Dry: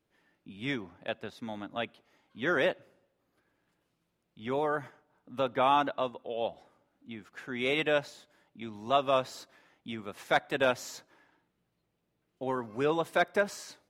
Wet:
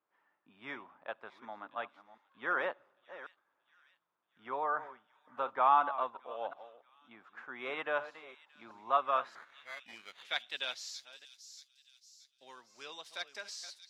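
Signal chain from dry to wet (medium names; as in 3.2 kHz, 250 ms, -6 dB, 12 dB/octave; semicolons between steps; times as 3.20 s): chunks repeated in reverse 363 ms, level -13.5 dB; 9.35–10.25 s: sample-rate reducer 2.7 kHz, jitter 0%; on a send: feedback echo behind a high-pass 629 ms, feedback 47%, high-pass 5.2 kHz, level -6.5 dB; on the sum: band-pass sweep 1.1 kHz -> 4.8 kHz, 8.88–10.93 s; trim +3 dB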